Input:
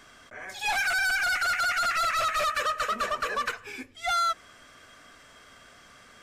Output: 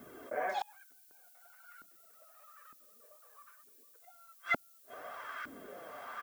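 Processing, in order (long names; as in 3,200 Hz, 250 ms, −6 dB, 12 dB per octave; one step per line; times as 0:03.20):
single-tap delay 462 ms −7.5 dB
asymmetric clip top −32 dBFS, bottom −22 dBFS
0:00.83–0:01.38: noise gate with hold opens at −23 dBFS
flanger 0.39 Hz, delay 1.4 ms, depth 8.4 ms, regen −31%
gate with flip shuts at −32 dBFS, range −40 dB
auto-filter band-pass saw up 1.1 Hz 260–1,600 Hz
background noise violet −80 dBFS
level +18 dB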